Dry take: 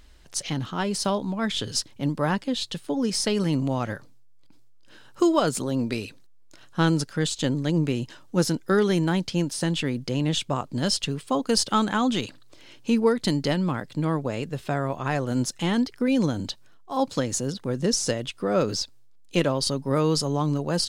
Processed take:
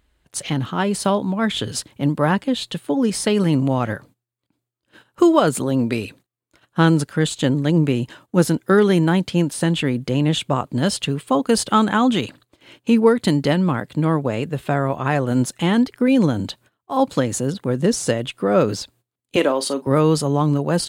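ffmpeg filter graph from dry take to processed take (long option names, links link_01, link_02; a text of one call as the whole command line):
ffmpeg -i in.wav -filter_complex "[0:a]asettb=1/sr,asplit=3[link_01][link_02][link_03];[link_01]atrim=end=19.364[link_04];[link_02]atrim=start=19.36:end=19.87,asetpts=PTS-STARTPTS,afade=type=in:duration=0.004:curve=qsin,afade=type=out:start_time=0.506:duration=0.004:curve=qsin,highpass=frequency=260:width=0.5412,highpass=frequency=260:width=1.3066,asplit=2[link_05][link_06];[link_06]adelay=40,volume=-14dB[link_07];[link_05][link_07]amix=inputs=2:normalize=0,atrim=end_sample=22491[link_08];[link_03]atrim=start=19.866[link_09];[link_04][link_08]acrossfade=duration=0.004:curve1=hsin:curve2=qsin[link_10];[link_10][link_09]acrossfade=duration=0.004:curve1=qsin:curve2=hsin,highpass=45,agate=range=-14dB:threshold=-51dB:ratio=16:detection=peak,equalizer=frequency=5400:width_type=o:width=0.77:gain=-10.5,volume=6.5dB" out.wav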